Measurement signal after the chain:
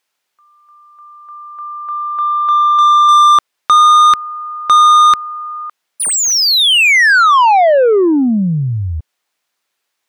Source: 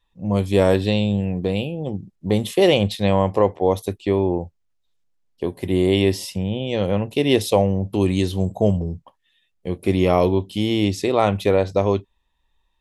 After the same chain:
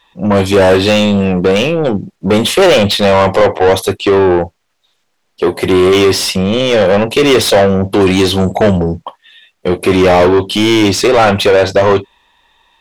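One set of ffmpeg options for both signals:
ffmpeg -i in.wav -filter_complex "[0:a]acontrast=65,asplit=2[link_01][link_02];[link_02]highpass=frequency=720:poles=1,volume=25dB,asoftclip=type=tanh:threshold=-1dB[link_03];[link_01][link_03]amix=inputs=2:normalize=0,lowpass=frequency=3600:poles=1,volume=-6dB" out.wav

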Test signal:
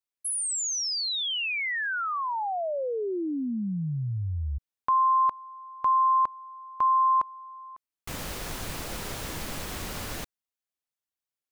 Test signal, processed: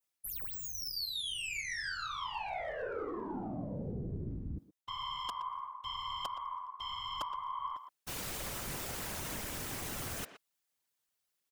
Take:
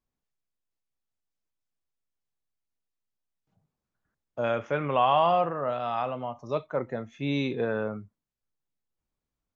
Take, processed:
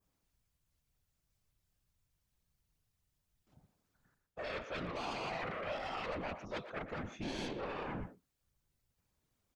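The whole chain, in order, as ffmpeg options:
ffmpeg -i in.wav -filter_complex "[0:a]areverse,acompressor=threshold=-36dB:ratio=8:attack=11:release=295:knee=6:detection=rms,areverse,adynamicequalizer=threshold=0.002:dfrequency=4100:dqfactor=1.4:tfrequency=4100:tqfactor=1.4:attack=5:release=100:ratio=0.375:range=3:mode=cutabove:tftype=bell,asplit=2[link_01][link_02];[link_02]asoftclip=type=hard:threshold=-39dB,volume=-10.5dB[link_03];[link_01][link_03]amix=inputs=2:normalize=0,highshelf=frequency=3000:gain=3.5,acontrast=51,aeval=exprs='0.168*(cos(1*acos(clip(val(0)/0.168,-1,1)))-cos(1*PI/2))+0.075*(cos(7*acos(clip(val(0)/0.168,-1,1)))-cos(7*PI/2))+0.00531*(cos(8*acos(clip(val(0)/0.168,-1,1)))-cos(8*PI/2))':channel_layout=same,afftfilt=real='hypot(re,im)*cos(2*PI*random(0))':imag='hypot(re,im)*sin(2*PI*random(1))':win_size=512:overlap=0.75,asplit=2[link_04][link_05];[link_05]adelay=120,highpass=300,lowpass=3400,asoftclip=type=hard:threshold=-30dB,volume=-10dB[link_06];[link_04][link_06]amix=inputs=2:normalize=0,volume=-3.5dB" out.wav

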